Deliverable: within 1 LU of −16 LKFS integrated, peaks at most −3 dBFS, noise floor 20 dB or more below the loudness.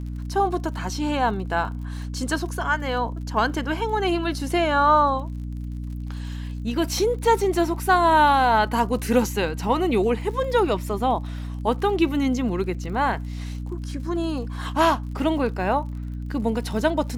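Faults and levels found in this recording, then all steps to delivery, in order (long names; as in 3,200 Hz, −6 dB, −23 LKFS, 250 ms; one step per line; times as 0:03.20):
crackle rate 45 per second; mains hum 60 Hz; hum harmonics up to 300 Hz; level of the hum −28 dBFS; integrated loudness −23.5 LKFS; sample peak −7.0 dBFS; target loudness −16.0 LKFS
→ click removal
mains-hum notches 60/120/180/240/300 Hz
level +7.5 dB
brickwall limiter −3 dBFS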